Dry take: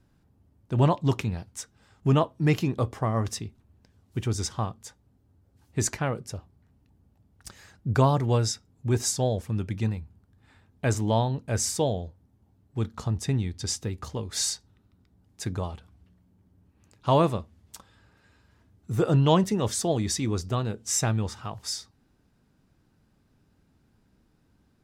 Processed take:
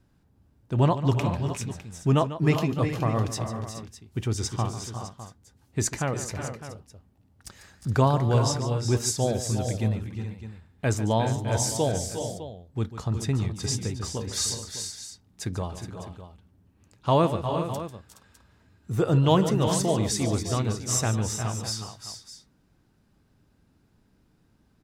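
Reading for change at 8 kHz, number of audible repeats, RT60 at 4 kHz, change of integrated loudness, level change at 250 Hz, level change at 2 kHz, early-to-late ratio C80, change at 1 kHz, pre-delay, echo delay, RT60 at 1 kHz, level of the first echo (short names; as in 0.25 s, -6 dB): +1.0 dB, 4, none, +0.5 dB, +1.0 dB, +1.5 dB, none, +1.0 dB, none, 0.145 s, none, -13.0 dB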